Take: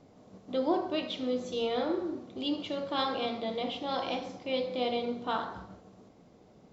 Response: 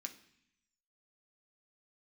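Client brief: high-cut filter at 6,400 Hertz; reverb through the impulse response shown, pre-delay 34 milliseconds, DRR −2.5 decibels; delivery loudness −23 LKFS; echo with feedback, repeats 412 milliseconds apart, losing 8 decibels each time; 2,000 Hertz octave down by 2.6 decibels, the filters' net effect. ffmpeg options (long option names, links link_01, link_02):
-filter_complex "[0:a]lowpass=6400,equalizer=frequency=2000:width_type=o:gain=-3.5,aecho=1:1:412|824|1236|1648|2060:0.398|0.159|0.0637|0.0255|0.0102,asplit=2[link_01][link_02];[1:a]atrim=start_sample=2205,adelay=34[link_03];[link_02][link_03]afir=irnorm=-1:irlink=0,volume=6dB[link_04];[link_01][link_04]amix=inputs=2:normalize=0,volume=7dB"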